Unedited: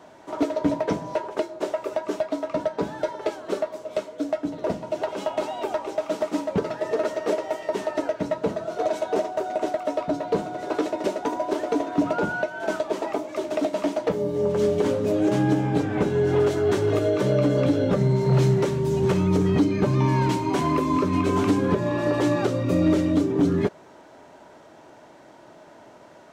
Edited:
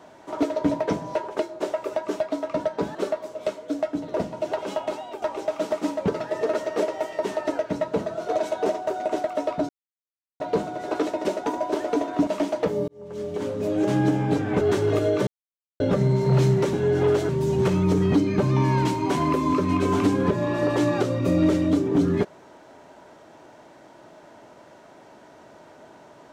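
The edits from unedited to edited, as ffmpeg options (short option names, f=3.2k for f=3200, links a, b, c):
-filter_complex "[0:a]asplit=11[a][b][c][d][e][f][g][h][i][j][k];[a]atrim=end=2.952[l];[b]atrim=start=3.448:end=5.72,asetpts=PTS-STARTPTS,afade=t=out:st=1.772:d=0.5:silence=0.316228[m];[c]atrim=start=5.72:end=10.19,asetpts=PTS-STARTPTS,afade=t=in:d=0.004:c=hsin:silence=0.316228,afade=t=out:st=4.466:d=0.004:c=hsin,apad=pad_dur=0.71[n];[d]atrim=start=10.19:end=12.062,asetpts=PTS-STARTPTS,afade=t=in:d=0.004:c=hsin[o];[e]atrim=start=13.708:end=14.32,asetpts=PTS-STARTPTS,afade=t=out:st=0.608:d=0.004:c=hsin[p];[f]atrim=start=14.32:end=16.052,asetpts=PTS-STARTPTS,afade=t=in:d=1.11[q];[g]atrim=start=16.608:end=17.27,asetpts=PTS-STARTPTS,afade=t=out:st=0.658:d=0.004:c=hsin[r];[h]atrim=start=17.27:end=17.8,asetpts=PTS-STARTPTS,volume=0[s];[i]atrim=start=17.8:end=18.732,asetpts=PTS-STARTPTS,afade=t=in:d=0.004:c=hsin[t];[j]atrim=start=16.048:end=16.612[u];[k]atrim=start=18.728[v];[m][n][o]concat=n=3:v=0:a=1[w];[l][w]acrossfade=d=0.004:c1=hsin:c2=hsin[x];[p][q]concat=n=2:v=0:a=1[y];[x][y]acrossfade=d=0.004:c1=hsin:c2=hsin[z];[r][s][t]concat=n=3:v=0:a=1[aa];[z][aa]acrossfade=d=0.004:c1=hsin:c2=hsin[ab];[ab][u]acrossfade=d=0.004:c1=hsin:c2=hsin[ac];[ac][v]acrossfade=d=0.004:c1=hsin:c2=hsin"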